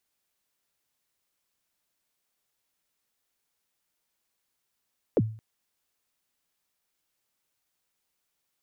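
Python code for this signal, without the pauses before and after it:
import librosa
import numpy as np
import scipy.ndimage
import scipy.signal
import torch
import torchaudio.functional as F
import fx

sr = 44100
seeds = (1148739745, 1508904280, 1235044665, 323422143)

y = fx.drum_kick(sr, seeds[0], length_s=0.22, level_db=-16.0, start_hz=580.0, end_hz=110.0, sweep_ms=41.0, decay_s=0.44, click=False)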